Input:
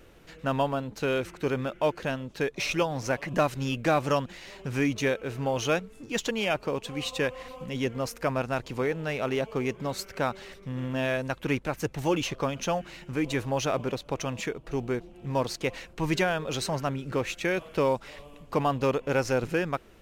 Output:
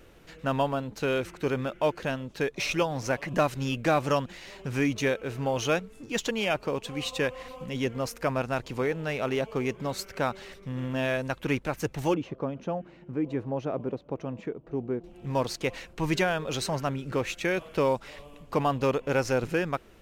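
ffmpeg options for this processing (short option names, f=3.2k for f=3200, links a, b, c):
-filter_complex "[0:a]asettb=1/sr,asplit=3[a][b][c];[a]atrim=end=12.144[d];[b]atrim=start=12.14:end=15.04,asetpts=PTS-STARTPTS,afade=t=in:d=0.004:c=qsin,afade=t=out:st=2.896:d=0.004:c=qsin,bandpass=f=270:t=q:w=0.63[e];[c]atrim=start=15.036[f];[d][e]acrossfade=d=0.004:c1=hsin:c2=qsin[g];[g][f]acrossfade=d=0.004:c1=qsin:c2=hsin"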